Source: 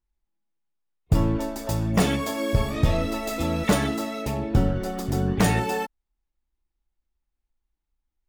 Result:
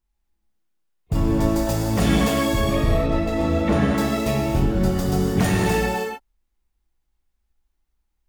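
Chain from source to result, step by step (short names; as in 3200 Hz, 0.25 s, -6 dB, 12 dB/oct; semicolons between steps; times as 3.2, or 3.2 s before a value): 2.75–3.98 LPF 1400 Hz 6 dB/oct; limiter -16.5 dBFS, peak gain reduction 7.5 dB; non-linear reverb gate 0.34 s flat, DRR -1.5 dB; gain +3 dB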